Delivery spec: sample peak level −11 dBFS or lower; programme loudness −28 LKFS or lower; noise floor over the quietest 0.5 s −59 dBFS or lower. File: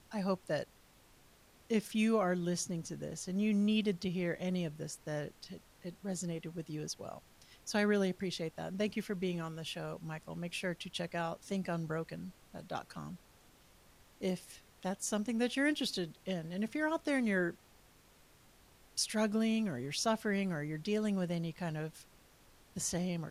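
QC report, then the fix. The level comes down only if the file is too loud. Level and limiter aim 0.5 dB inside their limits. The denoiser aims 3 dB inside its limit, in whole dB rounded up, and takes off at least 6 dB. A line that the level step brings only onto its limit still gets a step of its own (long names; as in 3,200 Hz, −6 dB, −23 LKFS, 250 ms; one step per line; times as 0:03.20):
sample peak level −21.0 dBFS: in spec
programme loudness −36.5 LKFS: in spec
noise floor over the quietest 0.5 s −63 dBFS: in spec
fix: no processing needed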